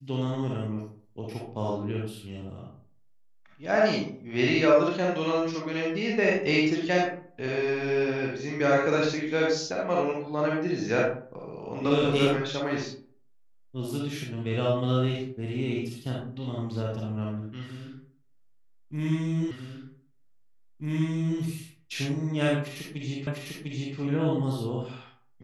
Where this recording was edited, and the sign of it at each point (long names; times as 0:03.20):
0:19.51: the same again, the last 1.89 s
0:23.27: the same again, the last 0.7 s